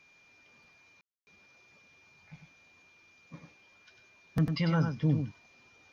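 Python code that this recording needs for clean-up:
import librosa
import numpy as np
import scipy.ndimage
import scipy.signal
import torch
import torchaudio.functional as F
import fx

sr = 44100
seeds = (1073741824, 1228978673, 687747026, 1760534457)

y = fx.notch(x, sr, hz=2400.0, q=30.0)
y = fx.fix_ambience(y, sr, seeds[0], print_start_s=0.0, print_end_s=0.5, start_s=1.01, end_s=1.27)
y = fx.fix_echo_inverse(y, sr, delay_ms=98, level_db=-6.5)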